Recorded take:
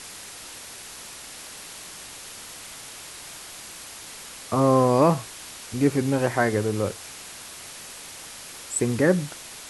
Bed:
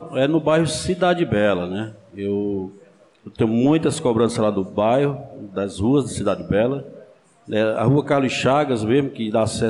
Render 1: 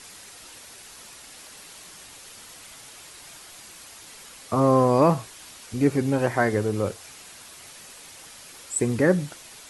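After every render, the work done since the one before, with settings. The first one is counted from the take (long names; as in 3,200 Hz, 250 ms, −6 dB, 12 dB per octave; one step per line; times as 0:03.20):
broadband denoise 6 dB, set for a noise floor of −41 dBFS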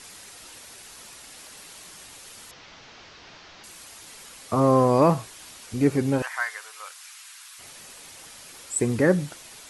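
0:02.51–0:03.64: linear delta modulator 32 kbit/s, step −47 dBFS
0:06.22–0:07.59: high-pass filter 1,100 Hz 24 dB per octave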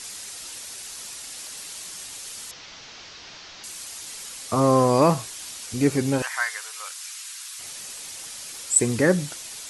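parametric band 7,000 Hz +9.5 dB 2.4 octaves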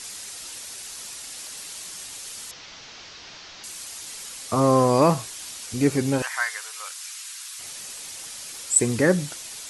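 no processing that can be heard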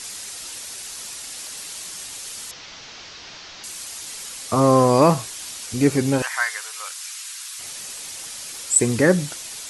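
level +3 dB
brickwall limiter −2 dBFS, peak gain reduction 2 dB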